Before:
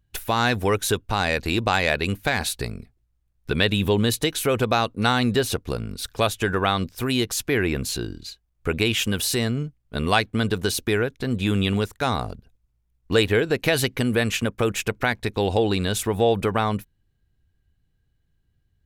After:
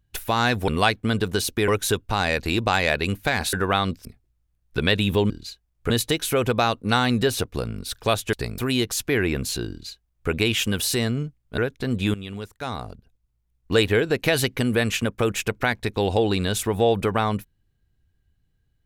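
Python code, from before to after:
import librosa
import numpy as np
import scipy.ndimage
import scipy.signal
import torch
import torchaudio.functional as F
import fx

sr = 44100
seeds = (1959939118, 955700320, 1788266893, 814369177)

y = fx.edit(x, sr, fx.swap(start_s=2.53, length_s=0.25, other_s=6.46, other_length_s=0.52),
    fx.duplicate(start_s=8.1, length_s=0.6, to_s=4.03),
    fx.move(start_s=9.98, length_s=1.0, to_s=0.68),
    fx.fade_in_from(start_s=11.54, length_s=1.65, floor_db=-15.5), tone=tone)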